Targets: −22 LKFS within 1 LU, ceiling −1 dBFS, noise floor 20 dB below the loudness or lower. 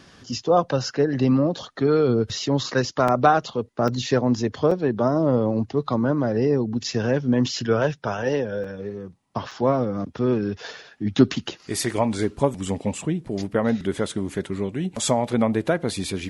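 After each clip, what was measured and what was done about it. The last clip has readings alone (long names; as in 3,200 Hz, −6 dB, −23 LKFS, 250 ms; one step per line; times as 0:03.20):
number of dropouts 5; longest dropout 4.3 ms; integrated loudness −23.0 LKFS; sample peak −3.5 dBFS; target loudness −22.0 LKFS
→ repair the gap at 0:03.08/0:03.88/0:04.71/0:08.64/0:09.51, 4.3 ms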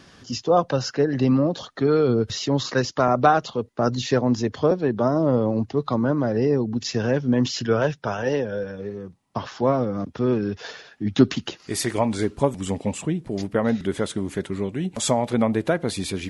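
number of dropouts 0; integrated loudness −23.0 LKFS; sample peak −3.5 dBFS; target loudness −22.0 LKFS
→ level +1 dB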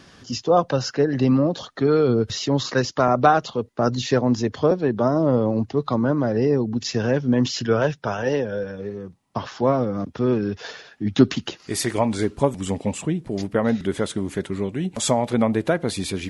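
integrated loudness −22.0 LKFS; sample peak −2.5 dBFS; background noise floor −51 dBFS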